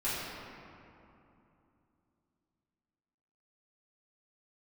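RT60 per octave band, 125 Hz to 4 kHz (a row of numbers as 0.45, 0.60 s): 3.6, 3.7, 2.9, 2.9, 2.2, 1.4 s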